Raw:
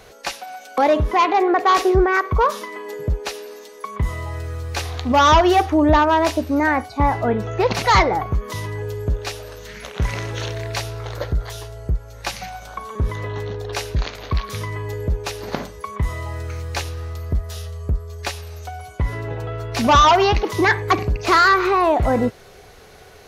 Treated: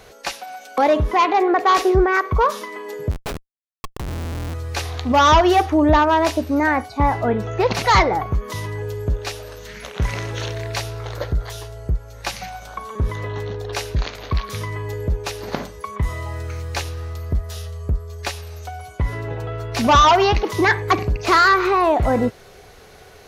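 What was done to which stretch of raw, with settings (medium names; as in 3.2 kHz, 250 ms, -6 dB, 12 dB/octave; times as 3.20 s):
3.11–4.54 s: Schmitt trigger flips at -25.5 dBFS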